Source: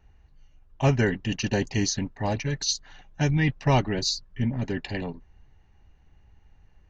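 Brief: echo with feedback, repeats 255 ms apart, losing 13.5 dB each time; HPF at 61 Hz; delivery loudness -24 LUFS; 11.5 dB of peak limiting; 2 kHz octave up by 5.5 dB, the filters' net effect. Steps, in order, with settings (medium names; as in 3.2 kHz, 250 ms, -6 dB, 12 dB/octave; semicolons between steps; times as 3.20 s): high-pass 61 Hz; peaking EQ 2 kHz +6.5 dB; peak limiter -20.5 dBFS; feedback delay 255 ms, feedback 21%, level -13.5 dB; trim +6.5 dB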